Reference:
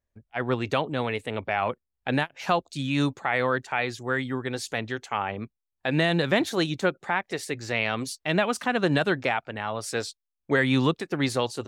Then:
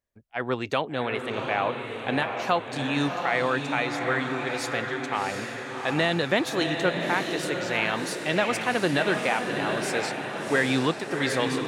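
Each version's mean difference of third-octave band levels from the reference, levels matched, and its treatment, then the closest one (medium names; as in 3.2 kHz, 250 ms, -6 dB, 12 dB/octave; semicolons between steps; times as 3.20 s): 8.5 dB: bass shelf 150 Hz -9.5 dB; echo that smears into a reverb 734 ms, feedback 54%, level -4.5 dB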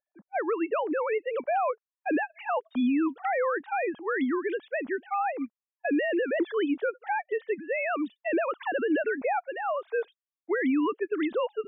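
16.0 dB: formants replaced by sine waves; peak limiter -22 dBFS, peak gain reduction 11 dB; treble shelf 2.7 kHz -11 dB; trim +3 dB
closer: first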